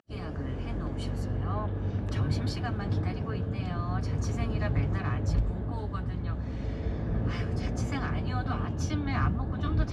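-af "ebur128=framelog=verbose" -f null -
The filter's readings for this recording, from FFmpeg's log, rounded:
Integrated loudness:
  I:         -31.6 LUFS
  Threshold: -41.6 LUFS
Loudness range:
  LRA:         1.5 LU
  Threshold: -51.5 LUFS
  LRA low:   -32.3 LUFS
  LRA high:  -30.8 LUFS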